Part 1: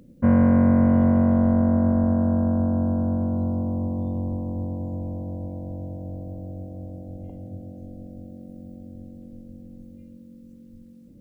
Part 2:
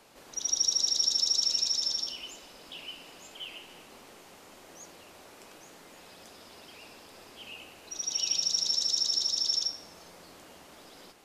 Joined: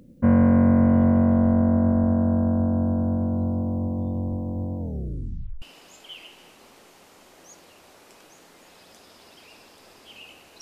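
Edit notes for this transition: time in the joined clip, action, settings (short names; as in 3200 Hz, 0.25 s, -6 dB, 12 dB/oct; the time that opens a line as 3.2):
part 1
4.78 tape stop 0.84 s
5.62 switch to part 2 from 2.93 s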